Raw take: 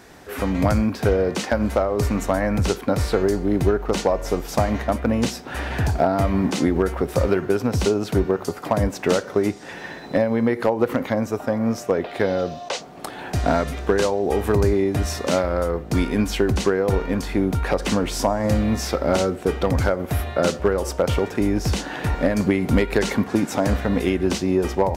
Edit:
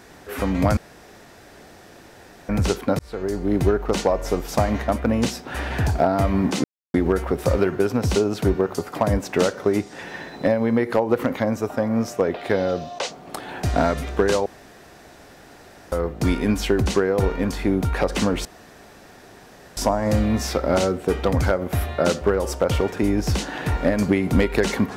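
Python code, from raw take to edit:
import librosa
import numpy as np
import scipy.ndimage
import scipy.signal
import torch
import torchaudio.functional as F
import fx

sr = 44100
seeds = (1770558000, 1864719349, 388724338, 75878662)

y = fx.edit(x, sr, fx.room_tone_fill(start_s=0.77, length_s=1.72),
    fx.fade_in_span(start_s=2.99, length_s=0.55),
    fx.insert_silence(at_s=6.64, length_s=0.3),
    fx.room_tone_fill(start_s=14.16, length_s=1.46),
    fx.insert_room_tone(at_s=18.15, length_s=1.32), tone=tone)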